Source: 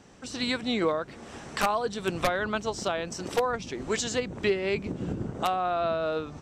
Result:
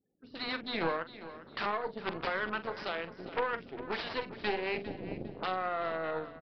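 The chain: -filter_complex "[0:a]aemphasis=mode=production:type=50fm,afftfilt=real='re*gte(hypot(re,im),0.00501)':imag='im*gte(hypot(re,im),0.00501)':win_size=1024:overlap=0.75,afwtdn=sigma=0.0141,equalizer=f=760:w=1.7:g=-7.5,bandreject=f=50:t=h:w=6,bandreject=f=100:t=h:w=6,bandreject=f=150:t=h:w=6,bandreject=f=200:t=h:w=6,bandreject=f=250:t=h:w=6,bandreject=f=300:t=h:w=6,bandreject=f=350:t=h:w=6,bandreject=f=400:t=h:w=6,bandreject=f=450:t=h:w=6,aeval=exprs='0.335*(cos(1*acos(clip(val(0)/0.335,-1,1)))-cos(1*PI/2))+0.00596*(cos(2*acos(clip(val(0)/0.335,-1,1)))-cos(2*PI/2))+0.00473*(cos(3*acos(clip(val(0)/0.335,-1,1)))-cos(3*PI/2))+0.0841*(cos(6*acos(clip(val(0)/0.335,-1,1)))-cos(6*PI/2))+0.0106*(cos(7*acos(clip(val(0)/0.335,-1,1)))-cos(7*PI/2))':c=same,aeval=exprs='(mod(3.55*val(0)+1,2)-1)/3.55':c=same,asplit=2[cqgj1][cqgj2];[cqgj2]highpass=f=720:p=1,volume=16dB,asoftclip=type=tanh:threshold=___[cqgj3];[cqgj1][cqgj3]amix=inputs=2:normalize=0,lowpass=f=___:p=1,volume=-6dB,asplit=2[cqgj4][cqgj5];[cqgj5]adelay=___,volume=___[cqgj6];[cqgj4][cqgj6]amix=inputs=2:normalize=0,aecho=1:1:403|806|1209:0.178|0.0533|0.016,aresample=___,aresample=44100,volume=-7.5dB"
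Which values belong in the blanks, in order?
-11dB, 1.5k, 43, -13dB, 11025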